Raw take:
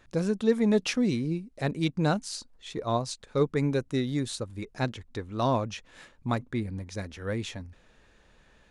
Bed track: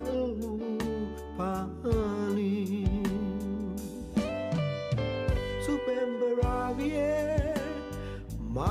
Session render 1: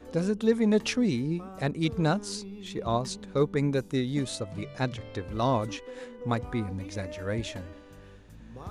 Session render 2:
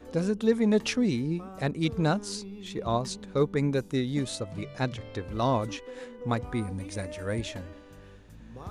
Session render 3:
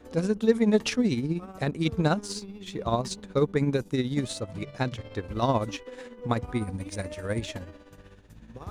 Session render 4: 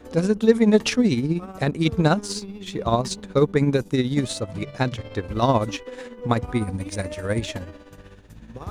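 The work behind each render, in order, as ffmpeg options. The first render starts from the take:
-filter_complex "[1:a]volume=0.237[s0];[0:a][s0]amix=inputs=2:normalize=0"
-filter_complex "[0:a]asettb=1/sr,asplit=3[s0][s1][s2];[s0]atrim=end=6.544[s3];[s1]atrim=start=6.54:end=7.41,asetpts=PTS-STARTPTS,afade=t=in:d=0.004:c=qsin,afade=t=out:st=0.866:d=0.004:c=qsin,equalizer=f=8900:w=4.8:g=14.5[s4];[s2]atrim=start=7.406[s5];[s3][s4]acrossfade=d=0.004:c1=hsin:c2=qsin[s6];[s6][s5]acrossfade=d=0.004:c1=qsin:c2=hsin"
-filter_complex "[0:a]tremolo=f=16:d=0.53,asplit=2[s0][s1];[s1]aeval=exprs='sgn(val(0))*max(abs(val(0))-0.00299,0)':c=same,volume=0.501[s2];[s0][s2]amix=inputs=2:normalize=0"
-af "volume=1.88"

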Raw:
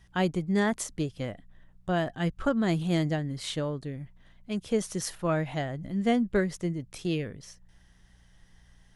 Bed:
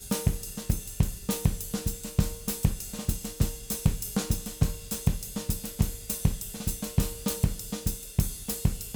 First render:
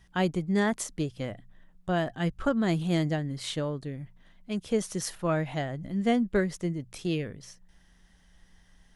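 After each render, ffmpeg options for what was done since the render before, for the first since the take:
-af "bandreject=f=60:t=h:w=4,bandreject=f=120:t=h:w=4"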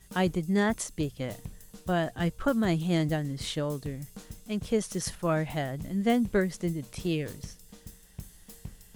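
-filter_complex "[1:a]volume=0.141[s0];[0:a][s0]amix=inputs=2:normalize=0"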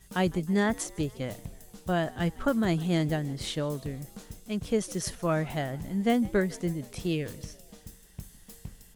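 -filter_complex "[0:a]asplit=5[s0][s1][s2][s3][s4];[s1]adelay=155,afreqshift=76,volume=0.0708[s5];[s2]adelay=310,afreqshift=152,volume=0.0417[s6];[s3]adelay=465,afreqshift=228,volume=0.0245[s7];[s4]adelay=620,afreqshift=304,volume=0.0146[s8];[s0][s5][s6][s7][s8]amix=inputs=5:normalize=0"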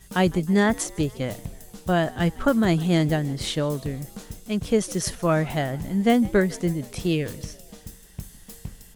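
-af "volume=2"

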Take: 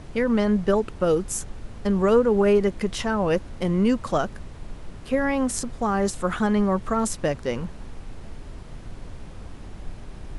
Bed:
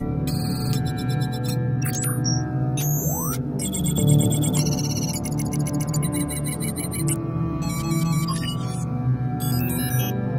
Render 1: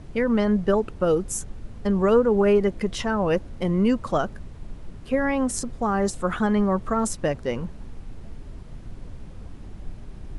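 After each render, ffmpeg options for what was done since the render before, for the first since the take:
-af "afftdn=nr=6:nf=-40"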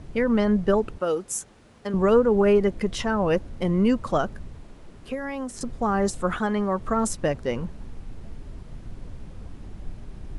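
-filter_complex "[0:a]asettb=1/sr,asplit=3[s0][s1][s2];[s0]atrim=end=0.984[s3];[s1]atrim=start=0.98:end=1.94,asetpts=PTS-STARTPTS,afade=t=in:d=0.004:c=qsin,afade=t=out:st=0.956:d=0.004:c=qsin,highpass=f=580:p=1[s4];[s2]atrim=start=1.936[s5];[s3][s4]acrossfade=d=0.004:c1=hsin:c2=qsin[s6];[s6][s5]acrossfade=d=0.004:c1=qsin:c2=hsin,asettb=1/sr,asplit=3[s7][s8][s9];[s7]atrim=end=4.604[s10];[s8]atrim=start=4.6:end=5.61,asetpts=PTS-STARTPTS,afade=t=in:d=0.004:c=qsin,afade=t=out:st=1.006:d=0.004:c=qsin,acrossover=split=240|4300[s11][s12][s13];[s11]acompressor=threshold=0.00794:ratio=4[s14];[s12]acompressor=threshold=0.0316:ratio=4[s15];[s13]acompressor=threshold=0.00501:ratio=4[s16];[s14][s15][s16]amix=inputs=3:normalize=0[s17];[s9]atrim=start=5.606[s18];[s10][s17]acrossfade=d=0.004:c1=hsin:c2=qsin[s19];[s19][s18]acrossfade=d=0.004:c1=qsin:c2=hsin,asettb=1/sr,asplit=3[s20][s21][s22];[s20]atrim=end=6.384[s23];[s21]atrim=start=6.38:end=6.8,asetpts=PTS-STARTPTS,afade=t=in:d=0.004:c=qsin,afade=t=out:st=0.416:d=0.004:c=qsin,lowshelf=f=220:g=-9[s24];[s22]atrim=start=6.796[s25];[s23][s24]acrossfade=d=0.004:c1=hsin:c2=qsin[s26];[s26][s25]acrossfade=d=0.004:c1=qsin:c2=hsin"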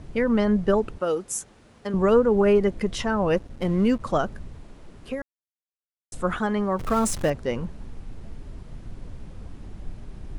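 -filter_complex "[0:a]asettb=1/sr,asplit=3[s0][s1][s2];[s0]atrim=end=3.374[s3];[s1]atrim=start=3.37:end=4.01,asetpts=PTS-STARTPTS,afade=t=in:d=0.004:c=qsin,afade=t=out:st=0.636:d=0.004:c=qsin,aeval=exprs='sgn(val(0))*max(abs(val(0))-0.00668,0)':c=same[s4];[s2]atrim=start=4.006[s5];[s3][s4]acrossfade=d=0.004:c1=hsin:c2=qsin[s6];[s6][s5]acrossfade=d=0.004:c1=qsin:c2=hsin,asettb=1/sr,asplit=3[s7][s8][s9];[s7]atrim=end=6.794[s10];[s8]atrim=start=6.79:end=7.3,asetpts=PTS-STARTPTS,afade=t=in:d=0.004:c=qsin,afade=t=out:st=0.506:d=0.004:c=qsin,aeval=exprs='val(0)+0.5*0.0299*sgn(val(0))':c=same[s11];[s9]atrim=start=7.296[s12];[s10][s11]acrossfade=d=0.004:c1=hsin:c2=qsin[s13];[s13][s12]acrossfade=d=0.004:c1=qsin:c2=hsin,asplit=3[s14][s15][s16];[s14]atrim=end=5.22,asetpts=PTS-STARTPTS,afade=t=out:st=5.216:d=0.004:c=hsin[s17];[s15]atrim=start=5.22:end=6.12,asetpts=PTS-STARTPTS,volume=0[s18];[s16]atrim=start=6.12,asetpts=PTS-STARTPTS,afade=t=in:d=0.004:c=hsin[s19];[s17][s18][s19]concat=n=3:v=0:a=1"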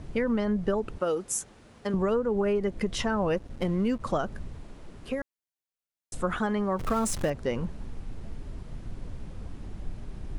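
-af "acompressor=threshold=0.0631:ratio=4"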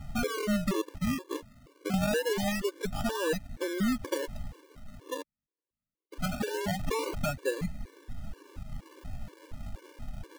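-af "acrusher=samples=40:mix=1:aa=0.000001:lfo=1:lforange=40:lforate=0.23,afftfilt=real='re*gt(sin(2*PI*2.1*pts/sr)*(1-2*mod(floor(b*sr/1024/300),2)),0)':imag='im*gt(sin(2*PI*2.1*pts/sr)*(1-2*mod(floor(b*sr/1024/300),2)),0)':win_size=1024:overlap=0.75"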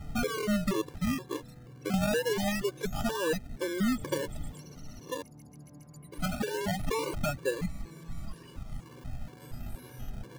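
-filter_complex "[1:a]volume=0.0447[s0];[0:a][s0]amix=inputs=2:normalize=0"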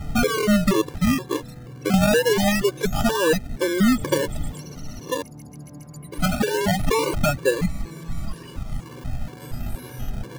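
-af "volume=3.35"

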